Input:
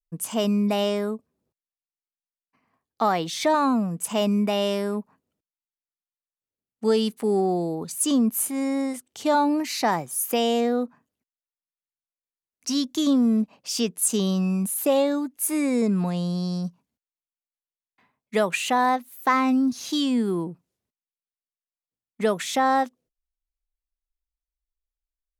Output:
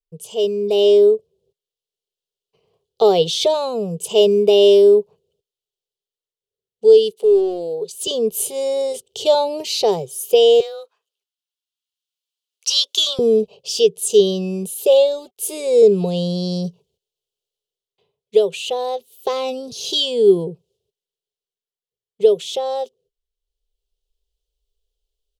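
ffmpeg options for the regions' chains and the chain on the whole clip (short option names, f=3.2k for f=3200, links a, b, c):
-filter_complex "[0:a]asettb=1/sr,asplit=3[a][b][c];[a]atrim=end=7.114[d];[b]atrim=start=7.11:end=8.07,asetpts=PTS-STARTPTS,afade=t=in:d=0.004:c=qsin,afade=t=out:st=0.956:d=0.004:c=qsin,highpass=290,asoftclip=type=hard:threshold=-23dB[e];[c]atrim=start=8.066[f];[d][e]acrossfade=d=0.004:c1=hsin:c2=qsin[g];[g][f]acrossfade=d=0.004:c1=qsin:c2=hsin,asettb=1/sr,asplit=3[h][i][j];[h]atrim=end=10.604[k];[i]atrim=start=10.6:end=13.19,asetpts=PTS-STARTPTS,afade=t=in:d=0.004:c=qsin,afade=t=out:st=2.586:d=0.004:c=qsin,highpass=f=1.4k:t=q:w=2.3,afreqshift=14[l];[j]atrim=start=13.186[m];[k][l]acrossfade=d=0.004:c1=hsin:c2=qsin[n];[n][m]acrossfade=d=0.004:c1=qsin:c2=hsin,asettb=1/sr,asplit=3[o][p][q];[o]atrim=end=14.954[r];[p]atrim=start=14.95:end=16.07,asetpts=PTS-STARTPTS,afade=t=in:d=0.004:c=qsin,afade=t=out:st=1.116:d=0.004:c=qsin,acompressor=mode=upward:threshold=-43dB:ratio=2.5:attack=3.2:release=140:knee=2.83:detection=peak,aeval=exprs='sgn(val(0))*max(abs(val(0))-0.00188,0)':c=same[s];[q]atrim=start=16.066[t];[r][s]acrossfade=d=0.004:c1=hsin:c2=qsin[u];[u][t]acrossfade=d=0.004:c1=qsin:c2=hsin,firequalizer=gain_entry='entry(160,0);entry(280,-26);entry(400,15);entry(640,-2);entry(1100,-15);entry(1800,-24);entry(3000,6);entry(5500,-1);entry(12000,-7)':delay=0.05:min_phase=1,dynaudnorm=f=530:g=3:m=14.5dB,volume=-2dB"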